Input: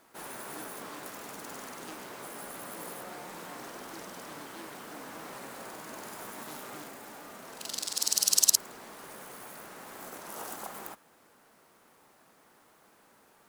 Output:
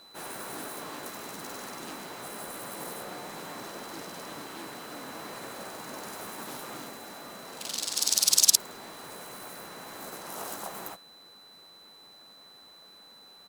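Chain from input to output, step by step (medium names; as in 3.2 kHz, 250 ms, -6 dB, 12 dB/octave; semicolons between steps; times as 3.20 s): harmony voices -3 st -5 dB; whistle 4 kHz -53 dBFS; trim +1.5 dB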